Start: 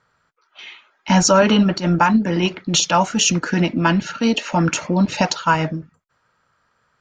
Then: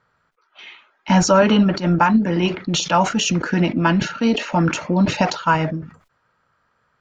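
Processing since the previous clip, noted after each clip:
low-pass filter 3,100 Hz 6 dB per octave
level that may fall only so fast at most 130 dB per second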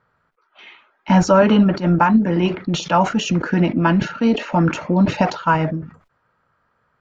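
high-shelf EQ 3,100 Hz −11 dB
level +1.5 dB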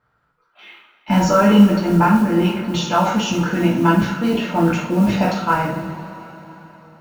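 noise that follows the level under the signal 30 dB
coupled-rooms reverb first 0.49 s, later 4 s, from −18 dB, DRR −4.5 dB
level −5.5 dB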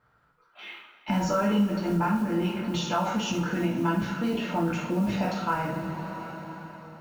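downward compressor 2 to 1, threshold −32 dBFS, peak gain reduction 14 dB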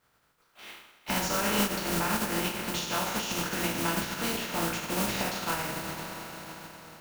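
compressing power law on the bin magnitudes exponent 0.46
level −3.5 dB

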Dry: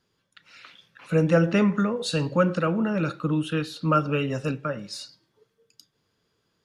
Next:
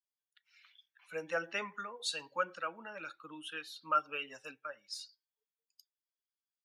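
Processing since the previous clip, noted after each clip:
spectral dynamics exaggerated over time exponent 1.5
high-pass filter 900 Hz 12 dB per octave
level −4.5 dB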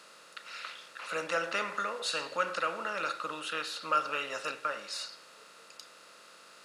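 compressor on every frequency bin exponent 0.4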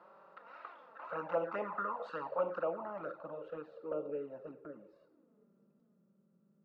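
flanger swept by the level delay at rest 6.2 ms, full sweep at −27 dBFS
low-pass filter sweep 900 Hz → 190 Hz, 0:02.18–0:06.16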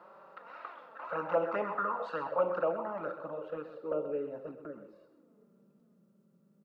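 single-tap delay 128 ms −11 dB
level +4.5 dB

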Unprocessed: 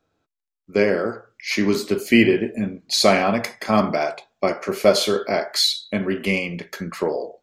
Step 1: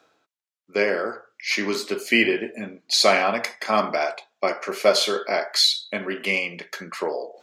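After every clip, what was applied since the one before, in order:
meter weighting curve A
reversed playback
upward compression, threshold −42 dBFS
reversed playback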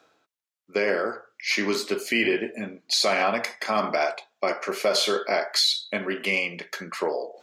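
brickwall limiter −12.5 dBFS, peak gain reduction 8.5 dB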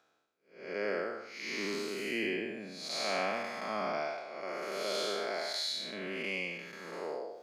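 spectrum smeared in time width 286 ms
level −6.5 dB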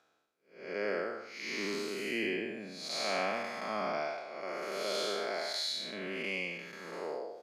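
downsampling to 32,000 Hz

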